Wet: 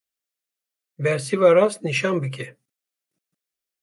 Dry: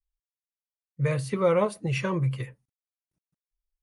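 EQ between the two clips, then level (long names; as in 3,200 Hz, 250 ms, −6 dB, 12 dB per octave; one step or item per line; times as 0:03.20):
high-pass filter 250 Hz 12 dB per octave
parametric band 940 Hz −10.5 dB 0.4 octaves
+9.0 dB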